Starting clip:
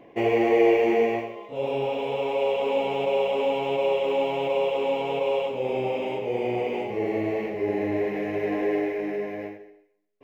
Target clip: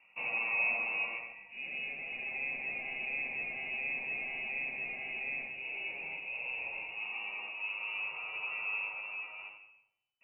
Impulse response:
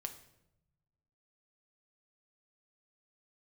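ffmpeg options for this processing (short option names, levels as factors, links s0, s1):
-filter_complex "[0:a]lowpass=f=2600:t=q:w=0.5098,lowpass=f=2600:t=q:w=0.6013,lowpass=f=2600:t=q:w=0.9,lowpass=f=2600:t=q:w=2.563,afreqshift=-3000,aemphasis=mode=reproduction:type=75kf[s0];[1:a]atrim=start_sample=2205,asetrate=52920,aresample=44100[s1];[s0][s1]afir=irnorm=-1:irlink=0,volume=0.531"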